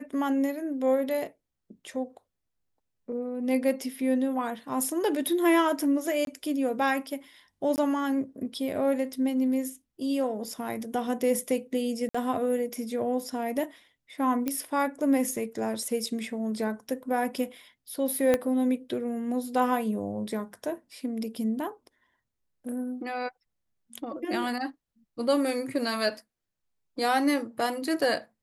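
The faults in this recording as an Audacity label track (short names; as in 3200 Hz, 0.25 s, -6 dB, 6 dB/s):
6.250000	6.270000	gap 22 ms
7.760000	7.780000	gap 19 ms
12.090000	12.140000	gap 55 ms
14.480000	14.480000	pop -14 dBFS
18.340000	18.340000	pop -11 dBFS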